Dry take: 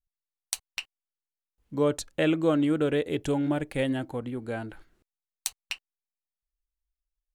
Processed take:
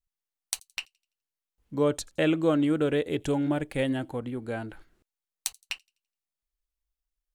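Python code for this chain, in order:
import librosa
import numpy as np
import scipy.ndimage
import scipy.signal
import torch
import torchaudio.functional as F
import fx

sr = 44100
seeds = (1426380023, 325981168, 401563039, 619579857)

y = fx.echo_wet_highpass(x, sr, ms=84, feedback_pct=38, hz=4800.0, wet_db=-24.0)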